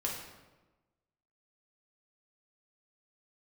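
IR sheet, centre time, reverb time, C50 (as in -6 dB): 49 ms, 1.2 s, 3.0 dB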